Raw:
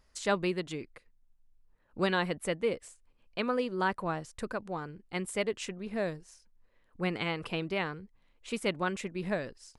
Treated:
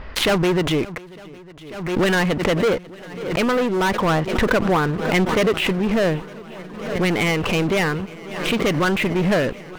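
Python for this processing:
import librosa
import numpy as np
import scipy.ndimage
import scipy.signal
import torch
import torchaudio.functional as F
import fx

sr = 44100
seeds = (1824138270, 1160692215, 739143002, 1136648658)

y = scipy.signal.sosfilt(scipy.signal.butter(4, 3100.0, 'lowpass', fs=sr, output='sos'), x)
y = fx.leveller(y, sr, passes=5)
y = fx.rider(y, sr, range_db=10, speed_s=0.5)
y = fx.echo_swing(y, sr, ms=904, ratio=1.5, feedback_pct=73, wet_db=-22.0)
y = fx.pre_swell(y, sr, db_per_s=58.0)
y = y * 10.0 ** (2.5 / 20.0)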